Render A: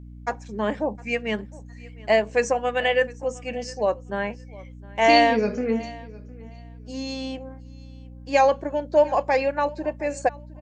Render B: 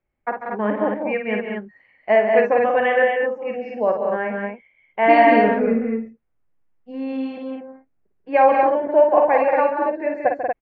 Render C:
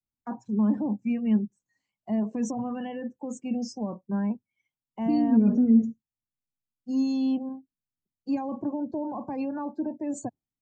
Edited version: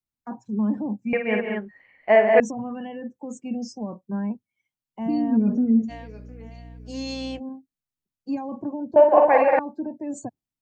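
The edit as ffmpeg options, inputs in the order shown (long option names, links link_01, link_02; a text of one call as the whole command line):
ffmpeg -i take0.wav -i take1.wav -i take2.wav -filter_complex "[1:a]asplit=2[link_01][link_02];[2:a]asplit=4[link_03][link_04][link_05][link_06];[link_03]atrim=end=1.132[link_07];[link_01]atrim=start=1.128:end=2.402[link_08];[link_04]atrim=start=2.398:end=5.92[link_09];[0:a]atrim=start=5.88:end=7.41[link_10];[link_05]atrim=start=7.37:end=8.962[link_11];[link_02]atrim=start=8.958:end=9.592[link_12];[link_06]atrim=start=9.588[link_13];[link_07][link_08]acrossfade=duration=0.004:curve1=hsin:curve2=hsin[link_14];[link_14][link_09]acrossfade=duration=0.004:curve1=hsin:curve2=hsin[link_15];[link_15][link_10]acrossfade=duration=0.04:curve1=tri:curve2=tri[link_16];[link_16][link_11]acrossfade=duration=0.04:curve1=tri:curve2=tri[link_17];[link_17][link_12]acrossfade=duration=0.004:curve1=hsin:curve2=hsin[link_18];[link_18][link_13]acrossfade=duration=0.004:curve1=hsin:curve2=hsin" out.wav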